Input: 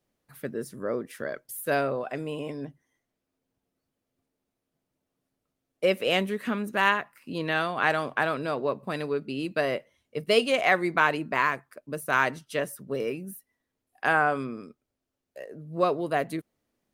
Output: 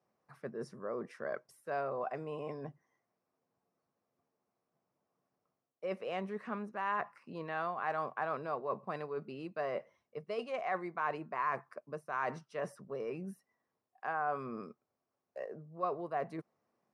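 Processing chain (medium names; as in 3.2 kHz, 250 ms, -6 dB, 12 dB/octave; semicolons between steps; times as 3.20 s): peaking EQ 6.5 kHz -14.5 dB 2.1 oct; reverse; compression 6:1, threshold -36 dBFS, peak gain reduction 17.5 dB; reverse; cabinet simulation 150–8200 Hz, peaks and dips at 280 Hz -9 dB, 760 Hz +5 dB, 1.1 kHz +8 dB, 3.3 kHz -6 dB, 5.5 kHz +10 dB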